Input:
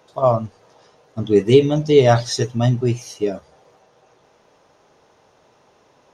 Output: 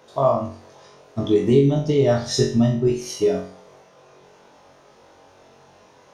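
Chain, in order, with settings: 1.43–2.88 s: bass shelf 470 Hz +9.5 dB; compression 5:1, threshold -19 dBFS, peak gain reduction 16.5 dB; flutter echo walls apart 3.7 m, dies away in 0.45 s; trim +1.5 dB

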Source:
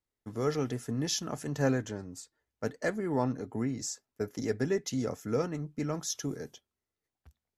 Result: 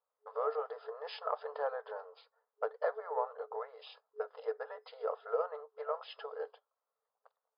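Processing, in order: resonant high shelf 1.7 kHz -13 dB, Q 3; harmony voices -12 st -5 dB; compression 6:1, threshold -30 dBFS, peak gain reduction 10 dB; FFT band-pass 420–5100 Hz; trim +3 dB

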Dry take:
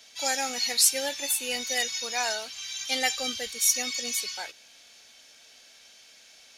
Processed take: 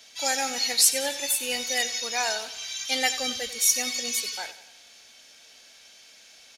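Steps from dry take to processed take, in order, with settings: feedback delay 92 ms, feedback 52%, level -14.5 dB; trim +1.5 dB

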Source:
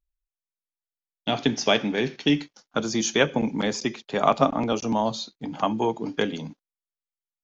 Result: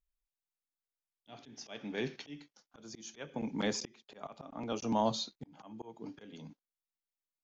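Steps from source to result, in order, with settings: slow attack 719 ms; trim -4.5 dB

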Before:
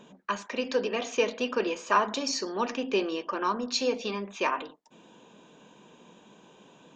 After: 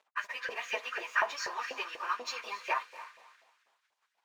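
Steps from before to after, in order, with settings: peaking EQ 2 kHz +11.5 dB 0.56 oct; echo that smears into a reverb 461 ms, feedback 43%, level -12.5 dB; crossover distortion -47.5 dBFS; plain phase-vocoder stretch 0.61×; LFO high-pass saw up 4.1 Hz 610–1800 Hz; trim -5 dB

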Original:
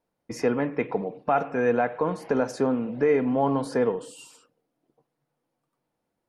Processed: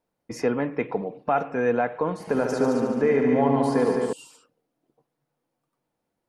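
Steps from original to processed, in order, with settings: 2.13–4.13 s: multi-head delay 72 ms, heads all three, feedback 48%, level -8 dB

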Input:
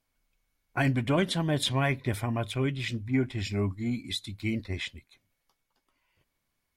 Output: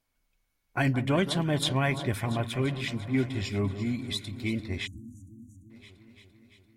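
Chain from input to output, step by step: echo whose repeats swap between lows and highs 171 ms, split 1.4 kHz, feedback 82%, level -12 dB; spectral selection erased 4.87–5.71 s, 330–5800 Hz

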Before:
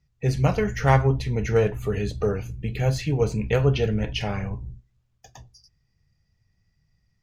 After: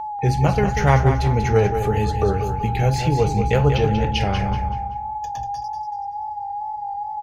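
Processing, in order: peaking EQ 75 Hz +5.5 dB 0.65 oct; in parallel at +1 dB: compression, threshold -28 dBFS, peak gain reduction 15 dB; on the sum: whistle 830 Hz -26 dBFS; wow and flutter 59 cents; feedback delay 190 ms, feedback 36%, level -8 dB

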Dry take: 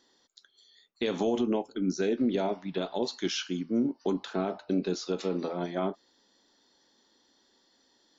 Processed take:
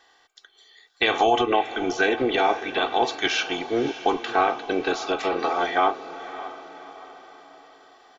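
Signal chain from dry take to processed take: spectral peaks clipped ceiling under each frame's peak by 12 dB; high-order bell 1.3 kHz +10.5 dB 2.9 oct; comb 2.6 ms, depth 74%; echo that smears into a reverb 590 ms, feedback 46%, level -13.5 dB

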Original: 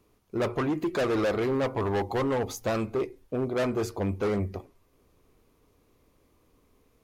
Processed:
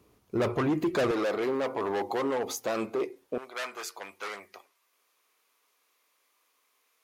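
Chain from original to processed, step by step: high-pass 54 Hz 12 dB/octave, from 1.11 s 300 Hz, from 3.38 s 1.3 kHz; peak limiter -24 dBFS, peak gain reduction 6 dB; trim +3 dB

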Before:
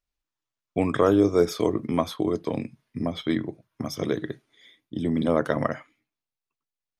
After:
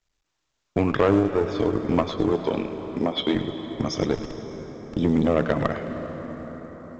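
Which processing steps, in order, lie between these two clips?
recorder AGC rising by 7.5 dB/s; low-pass that closes with the level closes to 2.5 kHz, closed at -18 dBFS; 1.18–1.79 s: compression 5:1, threshold -20 dBFS, peak gain reduction 6.5 dB; 4.15–4.97 s: Schmitt trigger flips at -27 dBFS; Chebyshev shaper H 2 -12 dB, 4 -15 dB, 5 -27 dB, 8 -29 dB, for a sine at -6.5 dBFS; 2.32–3.35 s: cabinet simulation 230–5600 Hz, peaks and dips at 390 Hz +4 dB, 900 Hz +4 dB, 3.3 kHz +7 dB; thinning echo 106 ms, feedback 46%, high-pass 510 Hz, level -12.5 dB; reverberation RT60 5.7 s, pre-delay 238 ms, DRR 9.5 dB; µ-law 128 kbps 16 kHz

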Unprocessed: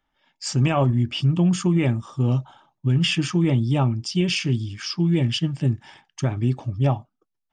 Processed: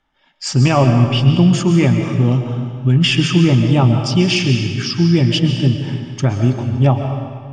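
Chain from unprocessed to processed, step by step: low-pass 7.3 kHz 12 dB/octave; on a send: reverberation RT60 1.8 s, pre-delay 90 ms, DRR 5 dB; on the sum: trim +7 dB

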